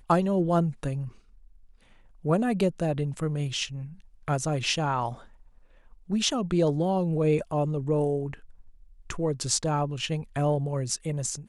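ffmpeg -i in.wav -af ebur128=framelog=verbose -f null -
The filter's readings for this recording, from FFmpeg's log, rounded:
Integrated loudness:
  I:         -27.4 LUFS
  Threshold: -38.5 LUFS
Loudness range:
  LRA:         2.9 LU
  Threshold: -48.6 LUFS
  LRA low:   -30.2 LUFS
  LRA high:  -27.2 LUFS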